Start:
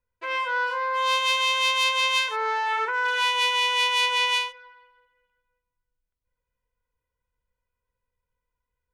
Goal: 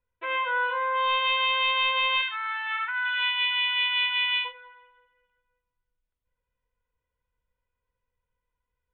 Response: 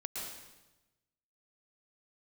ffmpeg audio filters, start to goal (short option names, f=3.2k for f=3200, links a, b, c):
-filter_complex "[0:a]asplit=3[a][b][c];[a]afade=t=out:st=2.21:d=0.02[d];[b]highpass=f=1.3k:w=0.5412,highpass=f=1.3k:w=1.3066,afade=t=in:st=2.21:d=0.02,afade=t=out:st=4.44:d=0.02[e];[c]afade=t=in:st=4.44:d=0.02[f];[d][e][f]amix=inputs=3:normalize=0,asoftclip=type=tanh:threshold=-13dB,aresample=8000,aresample=44100"